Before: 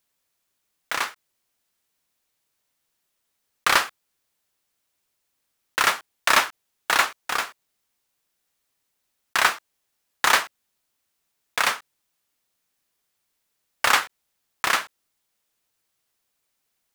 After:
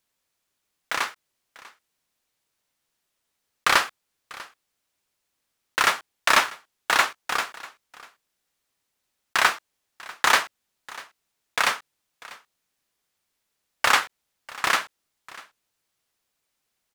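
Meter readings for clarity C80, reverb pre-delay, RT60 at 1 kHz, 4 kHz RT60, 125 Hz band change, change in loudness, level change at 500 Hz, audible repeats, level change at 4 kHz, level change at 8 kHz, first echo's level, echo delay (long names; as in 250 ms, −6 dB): no reverb audible, no reverb audible, no reverb audible, no reverb audible, 0.0 dB, −0.5 dB, 0.0 dB, 1, −0.5 dB, −1.5 dB, −20.5 dB, 644 ms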